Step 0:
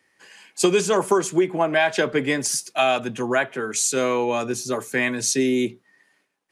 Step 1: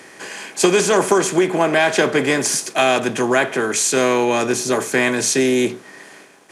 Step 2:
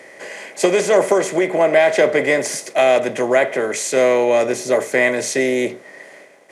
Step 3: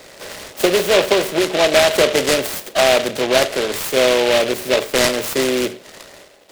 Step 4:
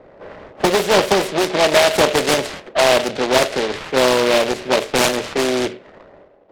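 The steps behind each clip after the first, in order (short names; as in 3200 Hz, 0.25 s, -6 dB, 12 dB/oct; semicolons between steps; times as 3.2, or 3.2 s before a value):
per-bin compression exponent 0.6; gain +1.5 dB
small resonant body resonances 570/2000 Hz, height 15 dB, ringing for 20 ms; gain -6 dB
noise-modulated delay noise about 2400 Hz, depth 0.12 ms
low-pass opened by the level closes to 860 Hz, open at -12 dBFS; Doppler distortion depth 0.63 ms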